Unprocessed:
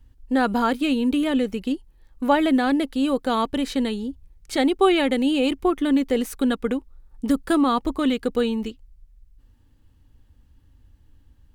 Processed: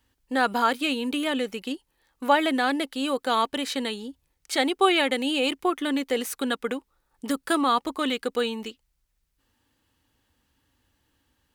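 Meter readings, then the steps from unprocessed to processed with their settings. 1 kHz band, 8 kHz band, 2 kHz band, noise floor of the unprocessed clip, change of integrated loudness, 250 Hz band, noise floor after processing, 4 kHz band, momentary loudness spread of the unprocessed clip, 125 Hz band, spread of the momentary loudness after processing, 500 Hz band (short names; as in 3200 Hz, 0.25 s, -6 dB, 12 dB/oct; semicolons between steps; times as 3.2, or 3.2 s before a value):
+0.5 dB, +3.0 dB, +2.0 dB, -57 dBFS, -3.0 dB, -7.5 dB, -75 dBFS, +2.5 dB, 10 LU, n/a, 12 LU, -3.5 dB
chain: HPF 860 Hz 6 dB/oct; gain +3 dB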